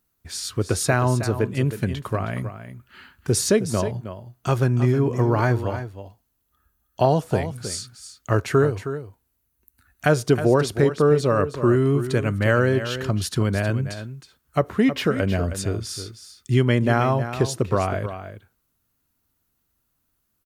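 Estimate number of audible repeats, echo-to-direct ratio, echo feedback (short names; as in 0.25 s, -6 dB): 1, -11.0 dB, no steady repeat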